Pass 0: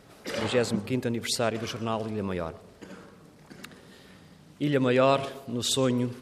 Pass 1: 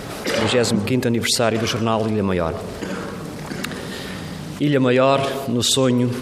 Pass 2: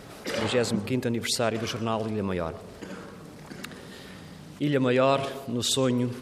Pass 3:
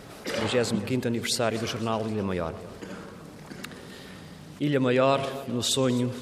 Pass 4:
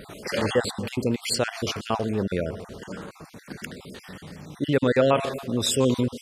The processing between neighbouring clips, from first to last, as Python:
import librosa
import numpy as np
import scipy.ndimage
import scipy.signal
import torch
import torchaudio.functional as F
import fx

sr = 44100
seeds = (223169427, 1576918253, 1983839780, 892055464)

y1 = fx.env_flatten(x, sr, amount_pct=50)
y1 = y1 * librosa.db_to_amplitude(5.5)
y2 = fx.upward_expand(y1, sr, threshold_db=-29.0, expansion=1.5)
y2 = y2 * librosa.db_to_amplitude(-6.0)
y3 = fx.echo_feedback(y2, sr, ms=257, feedback_pct=56, wet_db=-18.5)
y4 = fx.spec_dropout(y3, sr, seeds[0], share_pct=36)
y4 = y4 * librosa.db_to_amplitude(3.5)